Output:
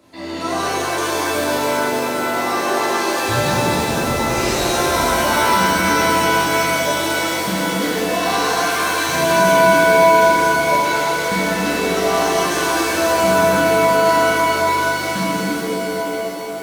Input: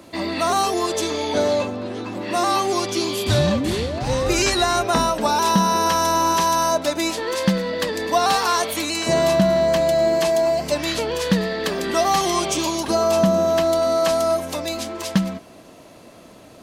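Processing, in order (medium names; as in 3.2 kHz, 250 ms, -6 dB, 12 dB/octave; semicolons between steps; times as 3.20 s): pitch-shifted reverb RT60 3.9 s, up +7 st, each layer -2 dB, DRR -9 dB; trim -10.5 dB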